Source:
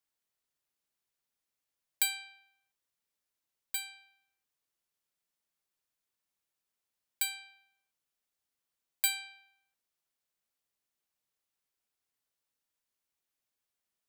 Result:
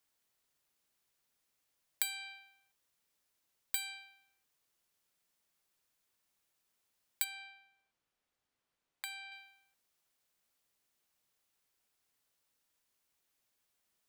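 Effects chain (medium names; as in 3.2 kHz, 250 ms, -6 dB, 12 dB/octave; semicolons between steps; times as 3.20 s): compression 12:1, threshold -38 dBFS, peak gain reduction 15.5 dB; 7.24–9.32 s: low-pass 2.4 kHz 6 dB/octave; trim +6.5 dB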